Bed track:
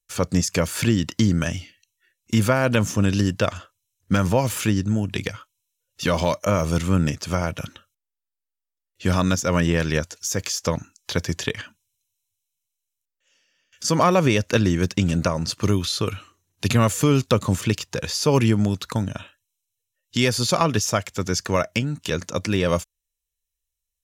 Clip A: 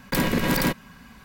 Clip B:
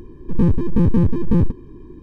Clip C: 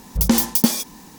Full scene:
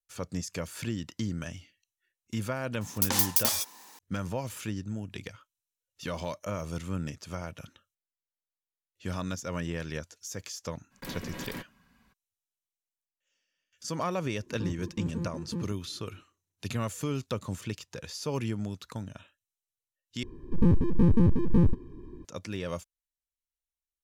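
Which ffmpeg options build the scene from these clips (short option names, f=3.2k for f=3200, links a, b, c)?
-filter_complex "[2:a]asplit=2[a][b];[0:a]volume=-14dB[c];[3:a]highpass=690[d];[a]highpass=120[e];[c]asplit=2[f][g];[f]atrim=end=20.234[h];[b]atrim=end=2.02,asetpts=PTS-STARTPTS,volume=-6dB[i];[g]atrim=start=22.246[j];[d]atrim=end=1.18,asetpts=PTS-STARTPTS,volume=-5dB,afade=t=in:d=0.004:c=hsin,afade=t=out:st=1.176:d=0.004:c=hsin,adelay=2810[k];[1:a]atrim=end=1.24,asetpts=PTS-STARTPTS,volume=-17.5dB,afade=t=in:d=0.02,afade=t=out:st=1.22:d=0.02,adelay=480690S[l];[e]atrim=end=2.02,asetpts=PTS-STARTPTS,volume=-17.5dB,afade=t=in:d=0.004:c=hsin,afade=t=out:st=2.016:d=0.004:c=hsin,adelay=14210[m];[h][i]acrossfade=d=0.004:c1=hsin:c2=hsin[n];[n][j]acrossfade=d=0.004:c1=hsin:c2=hsin[o];[o][k][l][m]amix=inputs=4:normalize=0"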